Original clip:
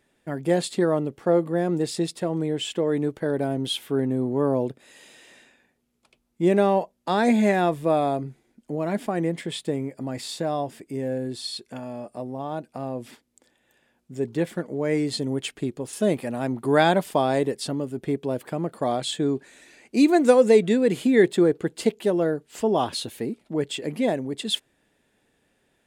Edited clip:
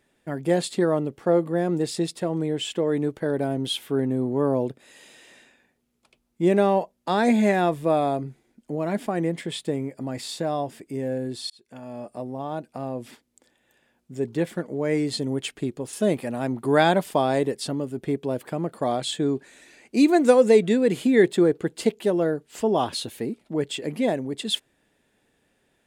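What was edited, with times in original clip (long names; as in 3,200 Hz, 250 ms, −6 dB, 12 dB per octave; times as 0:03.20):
0:11.50–0:12.03: fade in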